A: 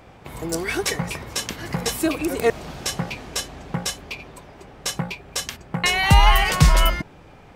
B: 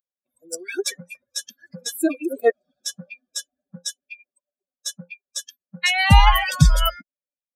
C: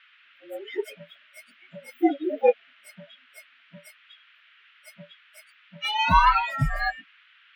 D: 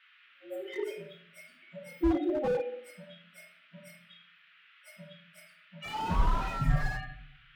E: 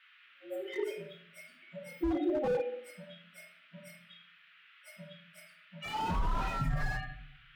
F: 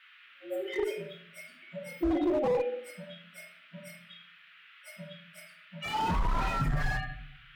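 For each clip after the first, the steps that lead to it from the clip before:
expander on every frequency bin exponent 3; trim +4.5 dB
frequency axis rescaled in octaves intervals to 114%; three-band isolator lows -15 dB, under 220 Hz, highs -23 dB, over 2.5 kHz; band noise 1.3–3.2 kHz -60 dBFS; trim +2.5 dB
simulated room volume 100 m³, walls mixed, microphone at 1 m; slew-rate limiter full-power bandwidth 57 Hz; trim -7.5 dB
peak limiter -23 dBFS, peak gain reduction 8.5 dB
one-sided clip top -29.5 dBFS, bottom -25.5 dBFS; trim +4.5 dB

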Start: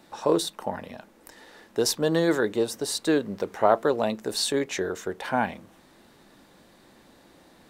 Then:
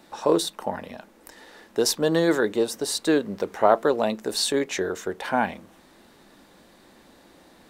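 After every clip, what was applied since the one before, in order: peaking EQ 120 Hz -6.5 dB 0.54 oct; trim +2 dB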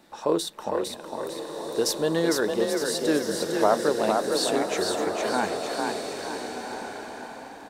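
on a send: frequency-shifting echo 455 ms, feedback 44%, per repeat +32 Hz, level -4 dB; on the sum: swelling reverb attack 1510 ms, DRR 6 dB; trim -3.5 dB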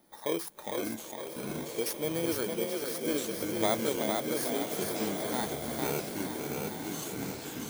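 bit-reversed sample order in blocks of 16 samples; ever faster or slower copies 389 ms, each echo -7 st, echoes 3, each echo -6 dB; trim -8 dB

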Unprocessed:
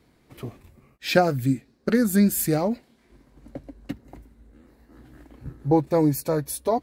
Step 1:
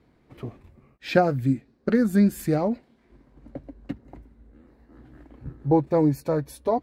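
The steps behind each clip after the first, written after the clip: low-pass 1.9 kHz 6 dB/octave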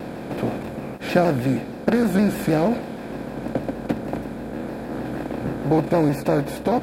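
spectral levelling over time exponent 0.4; vibrato with a chosen wave saw down 6.4 Hz, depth 100 cents; trim -2 dB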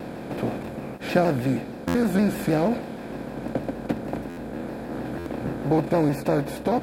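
buffer glitch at 1.87/4.29/5.18 s, samples 512, times 6; trim -2.5 dB

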